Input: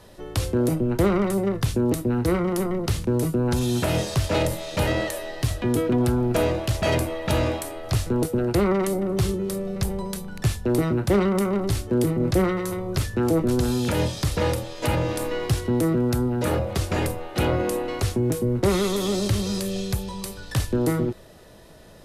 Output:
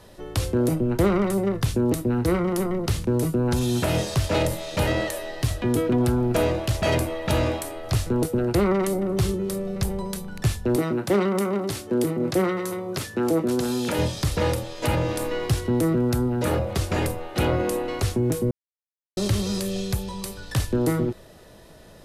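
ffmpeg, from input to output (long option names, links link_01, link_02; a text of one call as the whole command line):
ffmpeg -i in.wav -filter_complex "[0:a]asettb=1/sr,asplit=3[link_01][link_02][link_03];[link_01]atrim=end=10.764[link_04];[link_02]atrim=start=10.76:end=13.99,asetpts=PTS-STARTPTS,afade=type=in:duration=0.004:curve=qsin,afade=type=out:start_time=3.226:duration=0.004:curve=qsin,highpass=190[link_05];[link_03]atrim=start=13.986[link_06];[link_04][link_05]acrossfade=duration=0.004:curve1=hsin:curve2=qsin[link_07];[link_07][link_06]acrossfade=duration=0.004:curve1=qsin:curve2=hsin,asplit=3[link_08][link_09][link_10];[link_08]atrim=end=18.51,asetpts=PTS-STARTPTS,afade=type=out:start_time=18.506:duration=0.004:curve=hsin[link_11];[link_09]atrim=start=18.51:end=19.17,asetpts=PTS-STARTPTS,volume=0[link_12];[link_10]atrim=start=19.17,asetpts=PTS-STARTPTS,afade=type=in:duration=0.004:curve=hsin[link_13];[link_11][link_12][link_13]concat=n=3:v=0:a=1" out.wav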